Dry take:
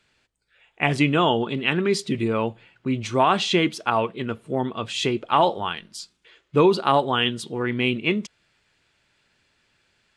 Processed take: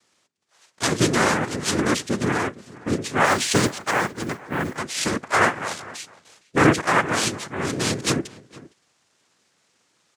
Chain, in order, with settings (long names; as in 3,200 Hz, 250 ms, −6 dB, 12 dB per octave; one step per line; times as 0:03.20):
cochlear-implant simulation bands 3
0:03.25–0:04.77: noise that follows the level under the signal 26 dB
slap from a distant wall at 79 metres, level −20 dB